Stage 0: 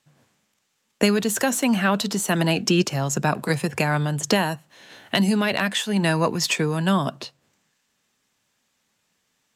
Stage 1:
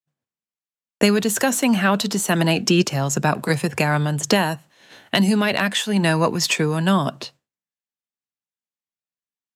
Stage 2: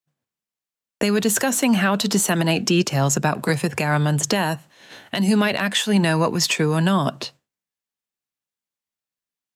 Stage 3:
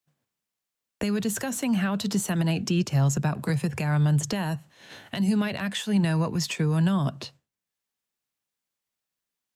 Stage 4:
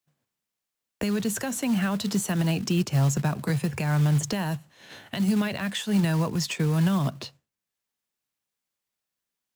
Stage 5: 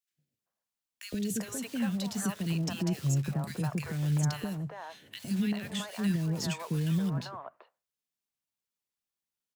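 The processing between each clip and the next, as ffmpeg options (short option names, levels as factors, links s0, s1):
-af "agate=range=0.0224:threshold=0.00794:ratio=3:detection=peak,volume=1.33"
-af "alimiter=limit=0.237:level=0:latency=1:release=253,volume=1.5"
-filter_complex "[0:a]acrossover=split=150[s0][s1];[s1]acompressor=threshold=0.00126:ratio=1.5[s2];[s0][s2]amix=inputs=2:normalize=0,volume=1.5"
-af "acrusher=bits=5:mode=log:mix=0:aa=0.000001"
-filter_complex "[0:a]acrossover=split=530|1700[s0][s1][s2];[s0]adelay=110[s3];[s1]adelay=390[s4];[s3][s4][s2]amix=inputs=3:normalize=0,volume=0.501"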